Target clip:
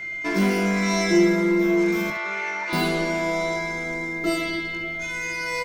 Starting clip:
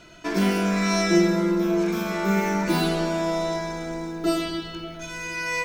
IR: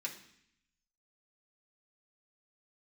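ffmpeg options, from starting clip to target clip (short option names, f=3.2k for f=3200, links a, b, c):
-filter_complex "[0:a]aeval=exprs='val(0)+0.0251*sin(2*PI*2100*n/s)':c=same,asplit=2[a][b];[b]asoftclip=type=tanh:threshold=-18dB,volume=-4dB[c];[a][c]amix=inputs=2:normalize=0,asettb=1/sr,asplit=3[d][e][f];[d]atrim=end=2.104[g];[e]atrim=start=2.1:end=2.73,asetpts=PTS-STARTPTS,afade=t=in:d=0.004:c=qsin,afade=t=out:st=0.626:d=0.004:c=qsin,asuperpass=centerf=1800:order=4:qfactor=0.5[h];[f]atrim=start=2.726[i];[g][h]acrossfade=d=0.004:c1=hsin:c2=qsin[j];[j][i]acrossfade=d=0.004:c1=qsin:c2=hsin,aecho=1:1:20|69:0.398|0.251,volume=-4.5dB"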